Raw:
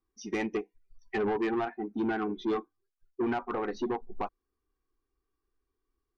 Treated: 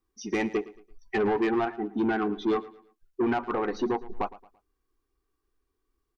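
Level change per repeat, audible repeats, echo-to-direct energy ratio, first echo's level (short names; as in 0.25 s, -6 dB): -9.0 dB, 2, -18.0 dB, -18.5 dB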